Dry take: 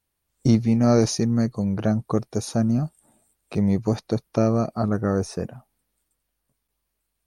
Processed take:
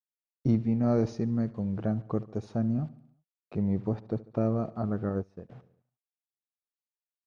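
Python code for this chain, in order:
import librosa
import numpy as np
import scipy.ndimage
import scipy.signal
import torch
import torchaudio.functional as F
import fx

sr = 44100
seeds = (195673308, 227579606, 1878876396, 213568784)

p1 = fx.high_shelf(x, sr, hz=4100.0, db=-7.0, at=(3.56, 4.41))
p2 = fx.quant_dither(p1, sr, seeds[0], bits=8, dither='none')
p3 = fx.spacing_loss(p2, sr, db_at_10k=32)
p4 = p3 + fx.echo_feedback(p3, sr, ms=72, feedback_pct=55, wet_db=-19, dry=0)
p5 = fx.upward_expand(p4, sr, threshold_db=-32.0, expansion=2.5, at=(5.09, 5.5))
y = p5 * 10.0 ** (-6.5 / 20.0)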